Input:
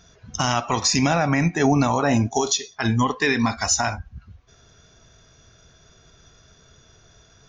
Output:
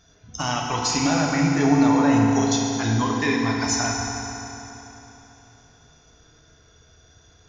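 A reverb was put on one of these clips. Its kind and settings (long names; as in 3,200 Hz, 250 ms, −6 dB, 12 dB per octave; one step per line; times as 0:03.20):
feedback delay network reverb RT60 3.5 s, high-frequency decay 0.85×, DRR −1.5 dB
level −5.5 dB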